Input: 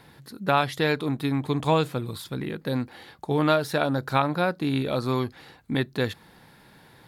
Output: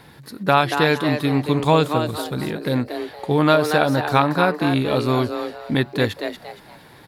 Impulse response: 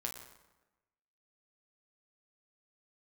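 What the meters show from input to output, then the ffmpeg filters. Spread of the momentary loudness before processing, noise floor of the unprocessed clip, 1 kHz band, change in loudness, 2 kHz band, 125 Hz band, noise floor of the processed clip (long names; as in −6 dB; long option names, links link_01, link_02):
10 LU, −54 dBFS, +7.0 dB, +6.0 dB, +7.0 dB, +5.5 dB, −47 dBFS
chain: -filter_complex "[0:a]asplit=5[link_01][link_02][link_03][link_04][link_05];[link_02]adelay=233,afreqshift=150,volume=-7.5dB[link_06];[link_03]adelay=466,afreqshift=300,volume=-17.7dB[link_07];[link_04]adelay=699,afreqshift=450,volume=-27.8dB[link_08];[link_05]adelay=932,afreqshift=600,volume=-38dB[link_09];[link_01][link_06][link_07][link_08][link_09]amix=inputs=5:normalize=0,volume=5.5dB"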